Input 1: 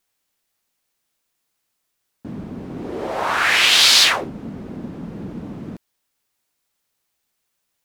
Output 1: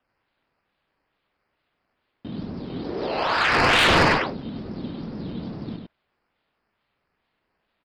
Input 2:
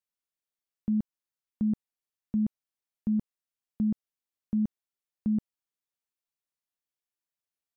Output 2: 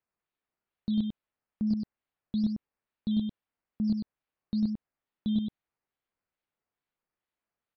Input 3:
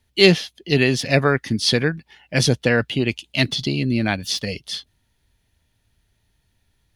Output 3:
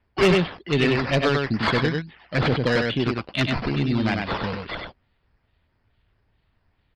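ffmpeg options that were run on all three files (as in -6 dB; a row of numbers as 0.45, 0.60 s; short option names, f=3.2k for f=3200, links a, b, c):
-filter_complex "[0:a]acrusher=samples=10:mix=1:aa=0.000001:lfo=1:lforange=6:lforate=2.3,aresample=11025,aresample=44100,asplit=2[a][b];[b]aecho=0:1:98:0.596[c];[a][c]amix=inputs=2:normalize=0,asoftclip=type=tanh:threshold=-9.5dB,volume=-2dB"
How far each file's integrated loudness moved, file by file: -6.0, -0.5, -3.0 LU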